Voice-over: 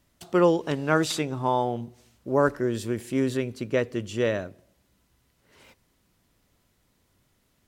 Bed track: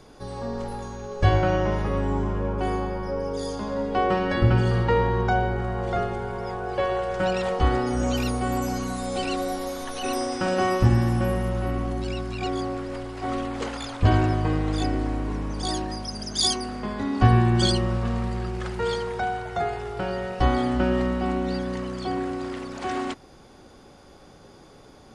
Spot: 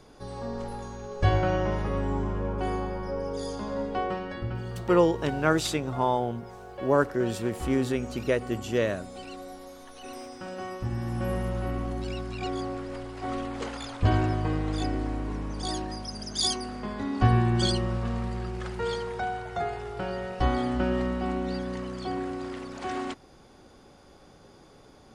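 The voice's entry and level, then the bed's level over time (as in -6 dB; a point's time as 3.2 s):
4.55 s, -1.0 dB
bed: 3.82 s -3.5 dB
4.45 s -14 dB
10.84 s -14 dB
11.34 s -4 dB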